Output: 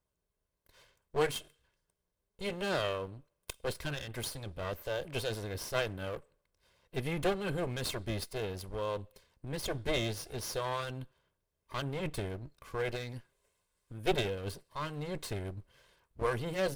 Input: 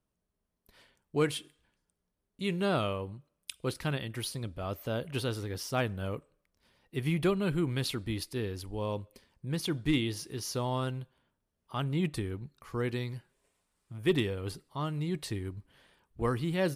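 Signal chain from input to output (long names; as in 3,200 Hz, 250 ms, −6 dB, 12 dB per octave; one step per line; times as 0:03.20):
lower of the sound and its delayed copy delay 1.9 ms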